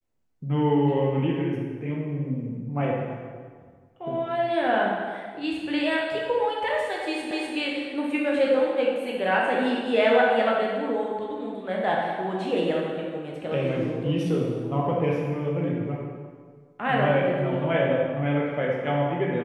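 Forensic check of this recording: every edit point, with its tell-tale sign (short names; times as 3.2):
7.31 repeat of the last 0.25 s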